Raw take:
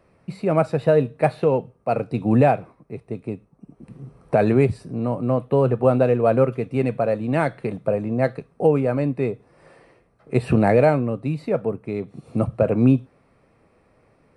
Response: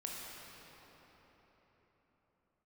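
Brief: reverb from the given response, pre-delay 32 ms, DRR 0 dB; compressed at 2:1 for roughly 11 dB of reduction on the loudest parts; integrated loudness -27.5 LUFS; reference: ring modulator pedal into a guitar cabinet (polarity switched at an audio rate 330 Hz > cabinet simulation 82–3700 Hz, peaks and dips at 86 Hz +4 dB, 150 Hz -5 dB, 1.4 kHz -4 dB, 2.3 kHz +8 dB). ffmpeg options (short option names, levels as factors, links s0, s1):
-filter_complex "[0:a]acompressor=threshold=0.0251:ratio=2,asplit=2[s0][s1];[1:a]atrim=start_sample=2205,adelay=32[s2];[s1][s2]afir=irnorm=-1:irlink=0,volume=0.944[s3];[s0][s3]amix=inputs=2:normalize=0,aeval=exprs='val(0)*sgn(sin(2*PI*330*n/s))':c=same,highpass=82,equalizer=f=86:t=q:w=4:g=4,equalizer=f=150:t=q:w=4:g=-5,equalizer=f=1400:t=q:w=4:g=-4,equalizer=f=2300:t=q:w=4:g=8,lowpass=f=3700:w=0.5412,lowpass=f=3700:w=1.3066,volume=1.06"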